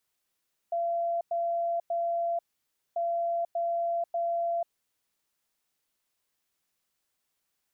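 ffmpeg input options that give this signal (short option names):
-f lavfi -i "aevalsrc='0.0501*sin(2*PI*682*t)*clip(min(mod(mod(t,2.24),0.59),0.49-mod(mod(t,2.24),0.59))/0.005,0,1)*lt(mod(t,2.24),1.77)':d=4.48:s=44100"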